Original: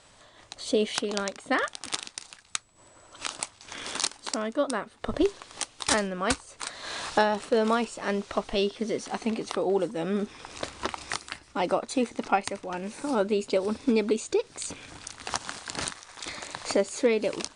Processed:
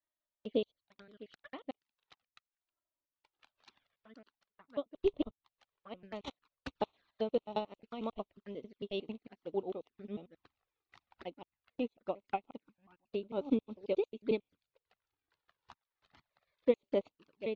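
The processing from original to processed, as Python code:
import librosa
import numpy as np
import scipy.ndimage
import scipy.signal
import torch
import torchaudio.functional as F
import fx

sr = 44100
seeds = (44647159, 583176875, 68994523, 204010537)

y = fx.block_reorder(x, sr, ms=90.0, group=5)
y = scipy.signal.sosfilt(scipy.signal.butter(4, 3900.0, 'lowpass', fs=sr, output='sos'), y)
y = fx.env_flanger(y, sr, rest_ms=3.6, full_db=-25.0)
y = fx.upward_expand(y, sr, threshold_db=-46.0, expansion=2.5)
y = y * 10.0 ** (-2.0 / 20.0)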